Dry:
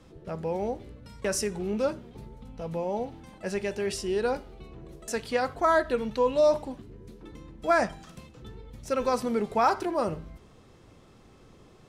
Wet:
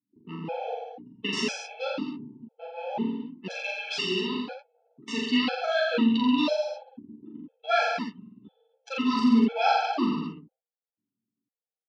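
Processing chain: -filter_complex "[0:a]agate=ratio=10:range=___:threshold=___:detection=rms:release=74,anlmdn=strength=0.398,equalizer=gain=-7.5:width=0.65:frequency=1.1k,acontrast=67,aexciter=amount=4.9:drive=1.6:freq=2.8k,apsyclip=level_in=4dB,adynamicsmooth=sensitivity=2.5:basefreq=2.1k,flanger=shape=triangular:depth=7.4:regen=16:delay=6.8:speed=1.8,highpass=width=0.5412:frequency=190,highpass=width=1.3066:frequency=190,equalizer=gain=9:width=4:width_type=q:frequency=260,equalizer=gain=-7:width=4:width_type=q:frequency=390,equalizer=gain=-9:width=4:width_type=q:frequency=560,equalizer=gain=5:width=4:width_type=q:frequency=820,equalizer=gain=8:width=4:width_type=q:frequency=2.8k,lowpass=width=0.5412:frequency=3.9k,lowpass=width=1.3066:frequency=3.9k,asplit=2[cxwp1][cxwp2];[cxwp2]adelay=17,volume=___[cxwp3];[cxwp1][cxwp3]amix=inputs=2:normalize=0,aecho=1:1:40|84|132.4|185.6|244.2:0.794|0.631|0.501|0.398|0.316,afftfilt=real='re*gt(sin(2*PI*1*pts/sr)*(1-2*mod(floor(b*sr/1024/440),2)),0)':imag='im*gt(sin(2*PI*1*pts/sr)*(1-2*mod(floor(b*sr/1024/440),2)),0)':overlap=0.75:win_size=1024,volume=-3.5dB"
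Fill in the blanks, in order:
-14dB, -48dB, -13dB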